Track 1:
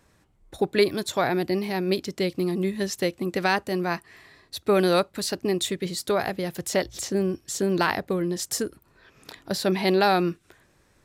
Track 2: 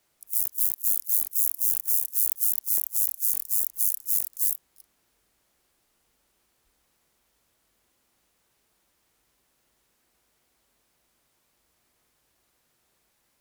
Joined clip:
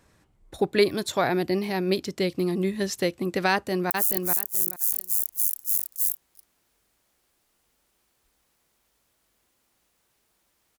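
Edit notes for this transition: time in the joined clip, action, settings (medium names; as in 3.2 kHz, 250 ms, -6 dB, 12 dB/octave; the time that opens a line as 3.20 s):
track 1
3.51–3.90 s: echo throw 430 ms, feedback 20%, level -4.5 dB
3.90 s: go over to track 2 from 2.31 s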